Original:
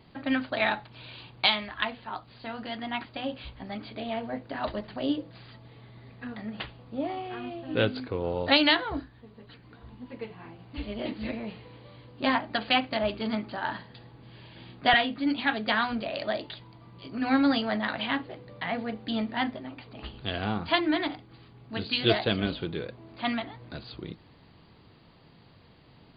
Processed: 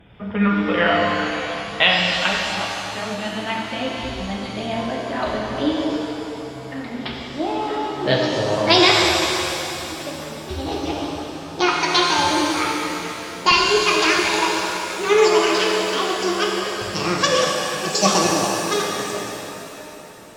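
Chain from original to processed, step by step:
gliding playback speed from 75% → 182%
reverb with rising layers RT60 3 s, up +7 semitones, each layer −8 dB, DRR −2 dB
level +5.5 dB

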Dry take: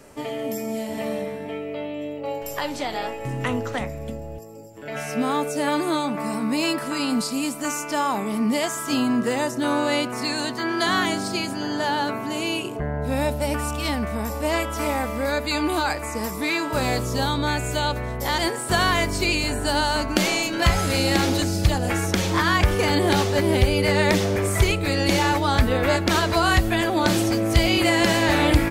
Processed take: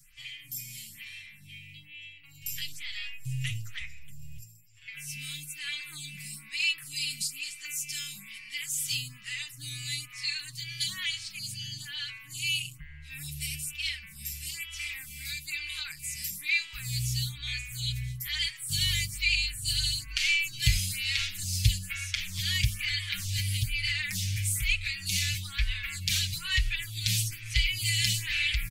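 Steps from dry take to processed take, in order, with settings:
Chebyshev band-stop filter 110–2,400 Hz, order 3
comb filter 6.4 ms, depth 78%
phaser with staggered stages 1.1 Hz

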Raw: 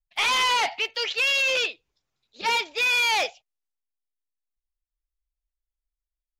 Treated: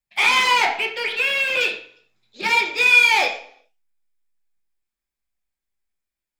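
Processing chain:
0:00.65–0:01.61: low-pass filter 3,000 Hz 12 dB per octave
in parallel at −3.5 dB: hard clipping −34 dBFS, distortion −6 dB
on the sum: convolution reverb RT60 0.60 s, pre-delay 3 ms, DRR −0.5 dB

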